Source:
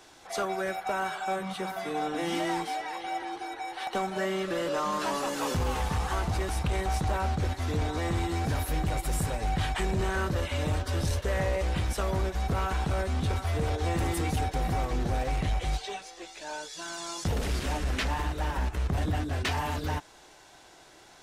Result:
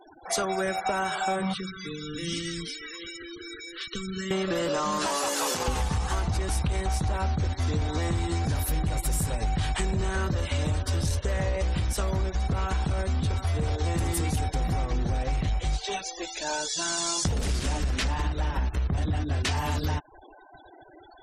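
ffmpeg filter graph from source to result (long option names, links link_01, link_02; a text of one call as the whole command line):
ffmpeg -i in.wav -filter_complex "[0:a]asettb=1/sr,asplit=3[link_01][link_02][link_03];[link_01]atrim=end=1.544[link_04];[link_02]atrim=start=1.54:end=4.31,asetpts=PTS-STARTPTS,afade=type=in:duration=0.004:curve=qsin,afade=type=out:start_time=2.766:duration=0.004:curve=qsin,highshelf=frequency=4900:gain=-6,acrossover=split=150|3000[link_05][link_06][link_07];[link_06]acompressor=threshold=-43dB:ratio=6:attack=3.2:release=140:knee=2.83:detection=peak[link_08];[link_05][link_08][link_07]amix=inputs=3:normalize=0,asuperstop=centerf=750:order=8:qfactor=1.2[link_09];[link_03]atrim=start=4.306[link_10];[link_04][link_09]acrossfade=duration=0.004:curve1=hsin:curve2=qsin[link_11];[link_11][link_10]acrossfade=duration=0.004:curve1=qsin:curve2=hsin,asettb=1/sr,asplit=3[link_12][link_13][link_14];[link_12]atrim=end=5.074[link_15];[link_13]atrim=start=5.07:end=5.68,asetpts=PTS-STARTPTS,afade=type=in:duration=0.004:curve=qsin,afade=type=out:start_time=0.606:duration=0.004:curve=qsin,highpass=410,acrusher=bits=4:mode=log:mix=0:aa=0.000001,asoftclip=type=hard:threshold=-26dB[link_16];[link_14]atrim=start=5.676[link_17];[link_15][link_16]acrossfade=duration=0.004:curve1=hsin:curve2=qsin[link_18];[link_18][link_17]acrossfade=duration=0.004:curve1=qsin:curve2=hsin,afftfilt=real='re*gte(hypot(re,im),0.00501)':imag='im*gte(hypot(re,im),0.00501)':win_size=1024:overlap=0.75,bass=frequency=250:gain=5,treble=frequency=4000:gain=8,acompressor=threshold=-32dB:ratio=6,volume=7.5dB" out.wav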